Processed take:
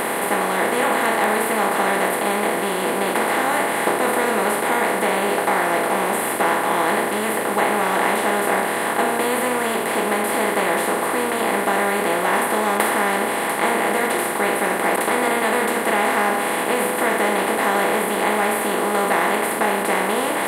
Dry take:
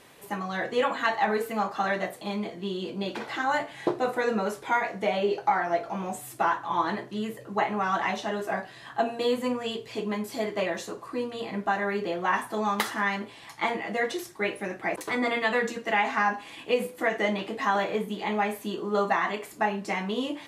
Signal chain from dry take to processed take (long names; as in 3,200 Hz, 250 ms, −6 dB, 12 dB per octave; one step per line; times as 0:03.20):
compressor on every frequency bin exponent 0.2
high shelf with overshoot 7,600 Hz +7.5 dB, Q 3
level −3.5 dB